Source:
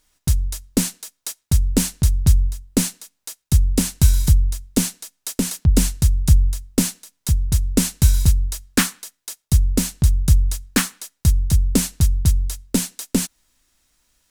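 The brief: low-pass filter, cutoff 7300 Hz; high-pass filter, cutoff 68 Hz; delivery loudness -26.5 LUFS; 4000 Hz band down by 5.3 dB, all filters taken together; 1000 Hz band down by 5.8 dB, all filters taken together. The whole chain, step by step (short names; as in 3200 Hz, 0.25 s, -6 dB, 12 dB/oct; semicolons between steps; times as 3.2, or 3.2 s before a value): HPF 68 Hz; LPF 7300 Hz; bell 1000 Hz -7.5 dB; bell 4000 Hz -6 dB; gain -3 dB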